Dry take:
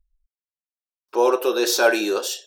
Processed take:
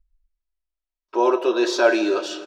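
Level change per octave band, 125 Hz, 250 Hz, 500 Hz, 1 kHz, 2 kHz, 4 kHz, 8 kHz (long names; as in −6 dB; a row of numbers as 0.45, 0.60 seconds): can't be measured, +3.0 dB, 0.0 dB, +0.5 dB, −1.5 dB, −4.0 dB, −9.5 dB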